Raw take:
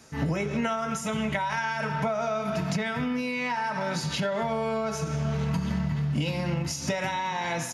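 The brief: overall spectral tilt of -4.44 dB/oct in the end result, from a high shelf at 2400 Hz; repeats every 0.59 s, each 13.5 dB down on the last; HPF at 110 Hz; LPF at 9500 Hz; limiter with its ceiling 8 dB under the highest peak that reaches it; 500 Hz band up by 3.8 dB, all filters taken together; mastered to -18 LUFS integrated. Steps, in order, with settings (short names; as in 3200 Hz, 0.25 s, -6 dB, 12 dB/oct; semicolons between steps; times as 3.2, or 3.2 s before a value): HPF 110 Hz; LPF 9500 Hz; bell 500 Hz +4.5 dB; high shelf 2400 Hz +6.5 dB; limiter -20 dBFS; feedback echo 0.59 s, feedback 21%, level -13.5 dB; gain +10 dB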